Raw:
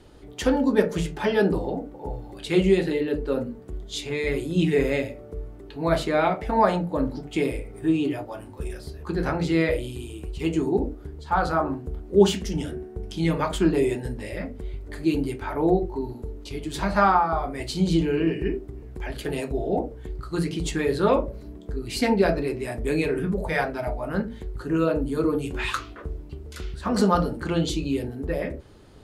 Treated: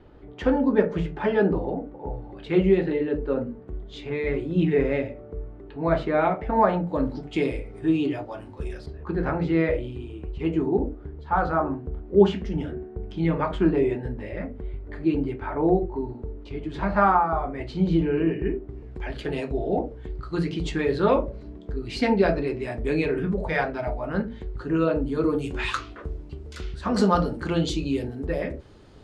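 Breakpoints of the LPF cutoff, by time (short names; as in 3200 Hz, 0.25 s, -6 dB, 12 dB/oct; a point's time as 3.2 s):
2100 Hz
from 6.87 s 4900 Hz
from 8.86 s 2100 Hz
from 18.7 s 4200 Hz
from 25.24 s 7000 Hz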